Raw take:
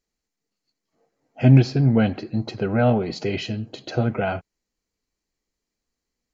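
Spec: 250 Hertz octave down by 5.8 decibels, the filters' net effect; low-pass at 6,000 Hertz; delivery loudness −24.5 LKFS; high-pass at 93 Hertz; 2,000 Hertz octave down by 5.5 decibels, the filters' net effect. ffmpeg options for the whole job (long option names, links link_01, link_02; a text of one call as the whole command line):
ffmpeg -i in.wav -af "highpass=93,lowpass=6000,equalizer=frequency=250:width_type=o:gain=-7,equalizer=frequency=2000:width_type=o:gain=-8" out.wav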